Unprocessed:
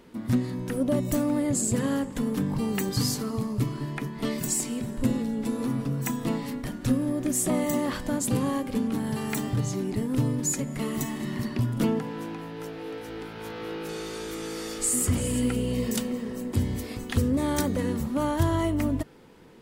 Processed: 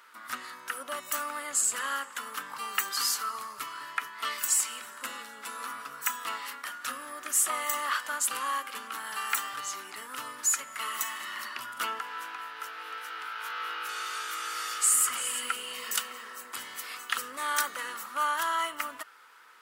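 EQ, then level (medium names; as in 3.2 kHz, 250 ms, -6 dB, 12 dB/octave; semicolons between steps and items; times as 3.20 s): treble shelf 7.4 kHz +6 dB; dynamic bell 2.9 kHz, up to +6 dB, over -58 dBFS, Q 6.1; resonant high-pass 1.3 kHz, resonance Q 4.5; -1.0 dB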